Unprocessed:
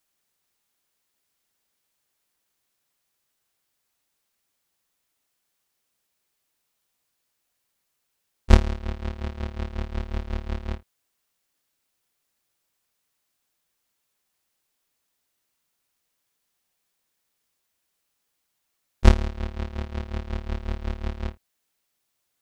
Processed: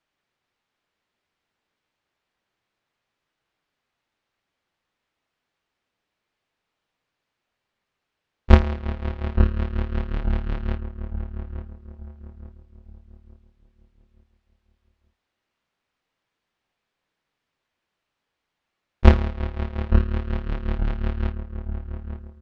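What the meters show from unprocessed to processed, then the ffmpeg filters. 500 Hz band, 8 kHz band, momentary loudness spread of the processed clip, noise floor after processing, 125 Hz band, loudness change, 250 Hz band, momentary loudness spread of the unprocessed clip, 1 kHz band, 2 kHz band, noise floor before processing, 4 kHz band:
+4.0 dB, n/a, 20 LU, -82 dBFS, +4.5 dB, +3.0 dB, +4.5 dB, 13 LU, +3.5 dB, +2.5 dB, -77 dBFS, -1.5 dB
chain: -filter_complex "[0:a]asplit=2[a][b];[b]adelay=871,lowpass=f=1.1k:p=1,volume=-8dB,asplit=2[c][d];[d]adelay=871,lowpass=f=1.1k:p=1,volume=0.4,asplit=2[e][f];[f]adelay=871,lowpass=f=1.1k:p=1,volume=0.4,asplit=2[g][h];[h]adelay=871,lowpass=f=1.1k:p=1,volume=0.4,asplit=2[i][j];[j]adelay=871,lowpass=f=1.1k:p=1,volume=0.4[k];[c][e][g][i][k]amix=inputs=5:normalize=0[l];[a][l]amix=inputs=2:normalize=0,flanger=delay=6:depth=7.8:regen=-67:speed=0.29:shape=triangular,lowpass=3k,volume=7.5dB"

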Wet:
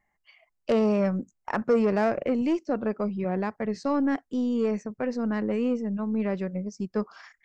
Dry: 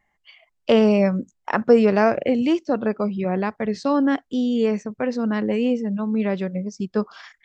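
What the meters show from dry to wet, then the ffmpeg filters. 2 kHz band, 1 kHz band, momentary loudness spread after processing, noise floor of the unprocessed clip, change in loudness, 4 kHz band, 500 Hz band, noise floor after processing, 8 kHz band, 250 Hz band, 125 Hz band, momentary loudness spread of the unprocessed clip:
-7.0 dB, -6.0 dB, 8 LU, -72 dBFS, -6.0 dB, -11.5 dB, -6.5 dB, -76 dBFS, n/a, -5.5 dB, -5.0 dB, 10 LU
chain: -af "aeval=exprs='0.631*(cos(1*acos(clip(val(0)/0.631,-1,1)))-cos(1*PI/2))+0.0891*(cos(3*acos(clip(val(0)/0.631,-1,1)))-cos(3*PI/2))+0.0224*(cos(5*acos(clip(val(0)/0.631,-1,1)))-cos(5*PI/2))+0.00891*(cos(8*acos(clip(val(0)/0.631,-1,1)))-cos(8*PI/2))':c=same,asoftclip=type=tanh:threshold=-13.5dB,equalizer=f=3.4k:t=o:w=0.54:g=-9.5,volume=-2dB"

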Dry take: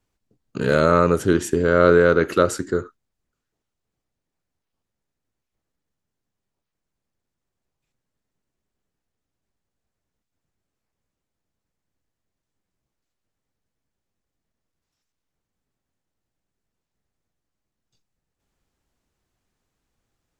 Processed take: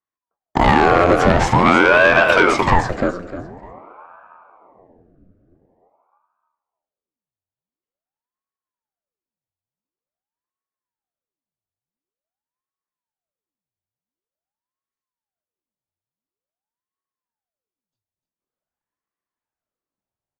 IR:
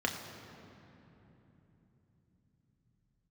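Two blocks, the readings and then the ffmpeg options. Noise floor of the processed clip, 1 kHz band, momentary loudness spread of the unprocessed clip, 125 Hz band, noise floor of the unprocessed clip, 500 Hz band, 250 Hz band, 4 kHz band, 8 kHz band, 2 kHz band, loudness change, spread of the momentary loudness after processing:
under -85 dBFS, +10.0 dB, 12 LU, +3.5 dB, -83 dBFS, +1.5 dB, +3.5 dB, +10.0 dB, 0.0 dB, +11.0 dB, +4.5 dB, 14 LU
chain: -filter_complex "[0:a]agate=range=-33dB:threshold=-38dB:ratio=3:detection=peak,acrossover=split=5800[a][b];[b]acompressor=threshold=-50dB:ratio=4:attack=1:release=60[c];[a][c]amix=inputs=2:normalize=0,equalizer=f=760:t=o:w=1.1:g=10.5,acrossover=split=910|6600[d][e][f];[d]acompressor=threshold=-20dB:ratio=4[g];[e]acompressor=threshold=-23dB:ratio=4[h];[f]acompressor=threshold=-60dB:ratio=4[i];[g][h][i]amix=inputs=3:normalize=0,aeval=exprs='(tanh(7.08*val(0)+0.3)-tanh(0.3))/7.08':c=same,aecho=1:1:301|602|903:0.447|0.0983|0.0216,asplit=2[j][k];[1:a]atrim=start_sample=2205,asetrate=41454,aresample=44100[l];[k][l]afir=irnorm=-1:irlink=0,volume=-20.5dB[m];[j][m]amix=inputs=2:normalize=0,alimiter=level_in=15.5dB:limit=-1dB:release=50:level=0:latency=1,aeval=exprs='val(0)*sin(2*PI*600*n/s+600*0.85/0.47*sin(2*PI*0.47*n/s))':c=same"

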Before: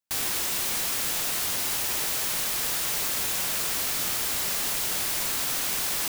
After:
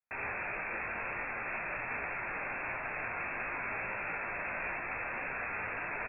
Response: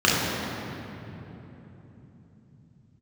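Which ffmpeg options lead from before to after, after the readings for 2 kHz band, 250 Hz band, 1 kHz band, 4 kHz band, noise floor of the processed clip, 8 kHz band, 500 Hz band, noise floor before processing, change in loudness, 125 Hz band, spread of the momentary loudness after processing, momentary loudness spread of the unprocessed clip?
0.0 dB, -6.5 dB, -1.5 dB, under -40 dB, -39 dBFS, under -40 dB, -2.5 dB, -28 dBFS, -11.5 dB, -6.5 dB, 1 LU, 0 LU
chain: -filter_complex "[0:a]asplit=2[a][b];[1:a]atrim=start_sample=2205,afade=t=out:st=0.16:d=0.01,atrim=end_sample=7497[c];[b][c]afir=irnorm=-1:irlink=0,volume=-23dB[d];[a][d]amix=inputs=2:normalize=0,lowpass=f=2.3k:t=q:w=0.5098,lowpass=f=2.3k:t=q:w=0.6013,lowpass=f=2.3k:t=q:w=0.9,lowpass=f=2.3k:t=q:w=2.563,afreqshift=-2700,lowshelf=f=120:g=6.5,asplit=2[e][f];[f]adelay=17,volume=-7dB[g];[e][g]amix=inputs=2:normalize=0,flanger=delay=6.1:depth=4.7:regen=-54:speed=1.7:shape=triangular,volume=1.5dB"

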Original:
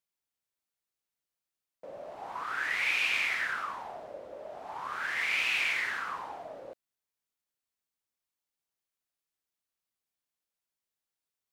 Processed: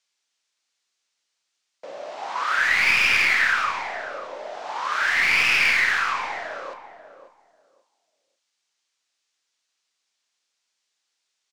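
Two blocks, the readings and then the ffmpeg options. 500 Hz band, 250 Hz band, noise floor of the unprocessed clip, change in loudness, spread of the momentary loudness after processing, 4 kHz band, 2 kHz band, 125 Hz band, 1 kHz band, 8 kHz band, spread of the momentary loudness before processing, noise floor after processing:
+8.0 dB, +9.5 dB, under -85 dBFS, +10.5 dB, 18 LU, +10.0 dB, +11.5 dB, n/a, +11.0 dB, +11.0 dB, 18 LU, -78 dBFS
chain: -filter_complex "[0:a]highpass=230,acrossover=split=2600[a][b];[b]acompressor=threshold=-44dB:ratio=4:attack=1:release=60[c];[a][c]amix=inputs=2:normalize=0,lowpass=f=6.8k:w=0.5412,lowpass=f=6.8k:w=1.3066,highshelf=f=2.4k:g=8,acrossover=split=440|2100[d][e][f];[f]aeval=exprs='clip(val(0),-1,0.00668)':c=same[g];[d][e][g]amix=inputs=3:normalize=0,tiltshelf=f=780:g=-4,asplit=2[h][i];[i]adelay=35,volume=-11.5dB[j];[h][j]amix=inputs=2:normalize=0,asplit=2[k][l];[l]adelay=541,lowpass=f=1.3k:p=1,volume=-10dB,asplit=2[m][n];[n]adelay=541,lowpass=f=1.3k:p=1,volume=0.2,asplit=2[o][p];[p]adelay=541,lowpass=f=1.3k:p=1,volume=0.2[q];[m][o][q]amix=inputs=3:normalize=0[r];[k][r]amix=inputs=2:normalize=0,volume=8dB"

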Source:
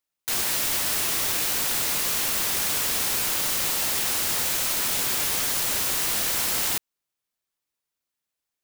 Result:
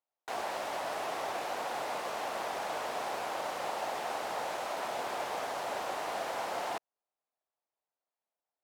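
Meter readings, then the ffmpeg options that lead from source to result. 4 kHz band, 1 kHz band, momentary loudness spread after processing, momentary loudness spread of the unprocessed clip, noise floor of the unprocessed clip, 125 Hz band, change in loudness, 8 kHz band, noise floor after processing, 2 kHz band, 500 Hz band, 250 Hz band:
-16.5 dB, +1.5 dB, 1 LU, 0 LU, under -85 dBFS, -16.5 dB, -14.0 dB, -23.5 dB, under -85 dBFS, -9.5 dB, +2.0 dB, -9.0 dB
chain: -af "bandpass=f=710:t=q:w=2.5:csg=0,volume=6dB"

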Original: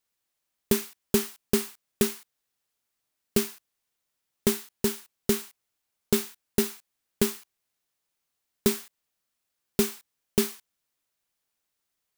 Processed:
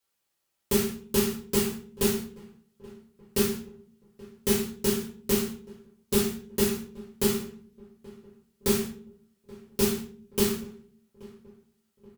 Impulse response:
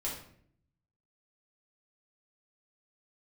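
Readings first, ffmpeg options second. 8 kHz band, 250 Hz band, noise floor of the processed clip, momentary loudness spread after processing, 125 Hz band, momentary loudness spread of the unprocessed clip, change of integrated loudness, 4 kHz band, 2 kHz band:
+1.0 dB, +1.5 dB, -79 dBFS, 12 LU, +2.5 dB, 9 LU, +0.5 dB, +1.5 dB, +0.5 dB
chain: -filter_complex "[0:a]highpass=f=99:p=1,acrossover=split=680|1600[a][b][c];[b]alimiter=level_in=14dB:limit=-24dB:level=0:latency=1,volume=-14dB[d];[a][d][c]amix=inputs=3:normalize=0,aeval=exprs='0.447*(cos(1*acos(clip(val(0)/0.447,-1,1)))-cos(1*PI/2))+0.1*(cos(5*acos(clip(val(0)/0.447,-1,1)))-cos(5*PI/2))':c=same,asplit=2[e][f];[f]adelay=828,lowpass=f=1.4k:p=1,volume=-20.5dB,asplit=2[g][h];[h]adelay=828,lowpass=f=1.4k:p=1,volume=0.49,asplit=2[i][j];[j]adelay=828,lowpass=f=1.4k:p=1,volume=0.49,asplit=2[k][l];[l]adelay=828,lowpass=f=1.4k:p=1,volume=0.49[m];[e][g][i][k][m]amix=inputs=5:normalize=0[n];[1:a]atrim=start_sample=2205,asetrate=61740,aresample=44100[o];[n][o]afir=irnorm=-1:irlink=0,volume=-2.5dB"

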